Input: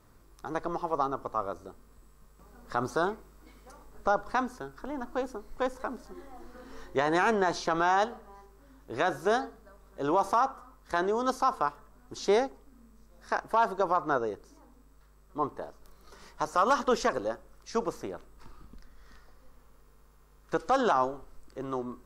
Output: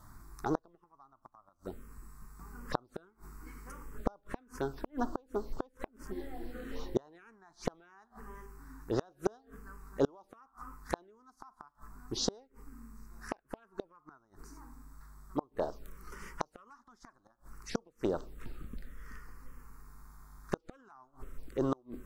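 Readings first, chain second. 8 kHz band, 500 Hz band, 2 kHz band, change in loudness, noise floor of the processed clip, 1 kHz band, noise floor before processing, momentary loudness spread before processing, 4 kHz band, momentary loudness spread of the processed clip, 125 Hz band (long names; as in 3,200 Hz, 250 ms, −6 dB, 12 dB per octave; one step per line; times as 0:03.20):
−3.0 dB, −9.0 dB, −15.5 dB, −10.0 dB, −72 dBFS, −16.0 dB, −59 dBFS, 18 LU, −5.0 dB, 22 LU, −0.5 dB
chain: gate with flip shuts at −23 dBFS, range −36 dB
phaser swept by the level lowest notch 400 Hz, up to 2,300 Hz, full sweep at −37.5 dBFS
level +7 dB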